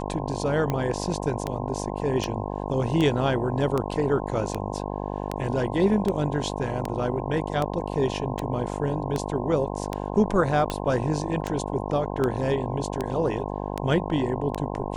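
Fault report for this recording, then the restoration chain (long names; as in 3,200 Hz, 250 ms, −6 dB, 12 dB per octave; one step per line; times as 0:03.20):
mains buzz 50 Hz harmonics 21 −31 dBFS
scratch tick 78 rpm −13 dBFS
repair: click removal
hum removal 50 Hz, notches 21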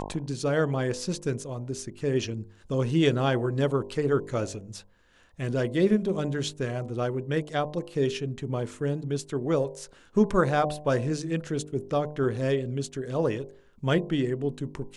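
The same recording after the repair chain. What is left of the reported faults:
none of them is left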